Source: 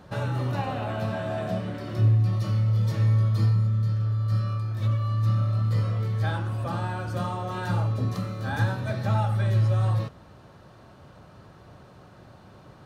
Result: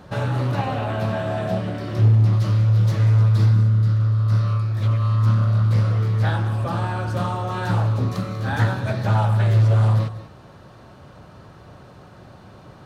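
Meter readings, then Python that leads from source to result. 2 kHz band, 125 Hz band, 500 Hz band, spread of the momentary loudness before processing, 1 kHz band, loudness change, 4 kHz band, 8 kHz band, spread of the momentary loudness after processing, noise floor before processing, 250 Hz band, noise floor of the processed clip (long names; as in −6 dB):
+5.0 dB, +6.0 dB, +5.0 dB, 8 LU, +5.0 dB, +6.0 dB, +5.0 dB, can't be measured, 9 LU, −51 dBFS, +5.0 dB, −46 dBFS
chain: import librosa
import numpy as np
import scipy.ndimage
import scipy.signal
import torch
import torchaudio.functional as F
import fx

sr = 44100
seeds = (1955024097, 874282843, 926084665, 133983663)

y = x + 10.0 ** (-14.0 / 20.0) * np.pad(x, (int(192 * sr / 1000.0), 0))[:len(x)]
y = fx.doppler_dist(y, sr, depth_ms=0.37)
y = y * 10.0 ** (5.0 / 20.0)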